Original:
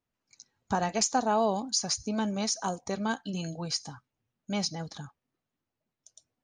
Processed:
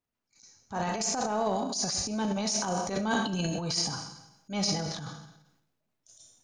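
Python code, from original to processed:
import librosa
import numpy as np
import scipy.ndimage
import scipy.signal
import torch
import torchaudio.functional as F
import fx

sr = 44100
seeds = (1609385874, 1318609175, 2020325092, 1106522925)

y = fx.rev_schroeder(x, sr, rt60_s=0.9, comb_ms=26, drr_db=7.0)
y = fx.transient(y, sr, attack_db=-10, sustain_db=9)
y = fx.rider(y, sr, range_db=10, speed_s=0.5)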